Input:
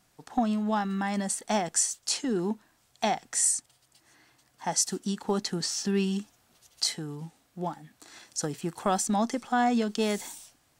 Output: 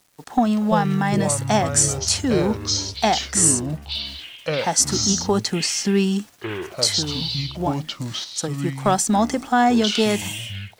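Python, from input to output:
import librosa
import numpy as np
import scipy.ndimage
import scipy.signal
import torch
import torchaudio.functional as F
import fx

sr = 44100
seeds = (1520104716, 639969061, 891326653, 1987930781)

y = fx.quant_dither(x, sr, seeds[0], bits=10, dither='none')
y = fx.echo_pitch(y, sr, ms=185, semitones=-6, count=3, db_per_echo=-6.0)
y = fx.upward_expand(y, sr, threshold_db=-36.0, expansion=1.5, at=(8.24, 8.98))
y = F.gain(torch.from_numpy(y), 8.0).numpy()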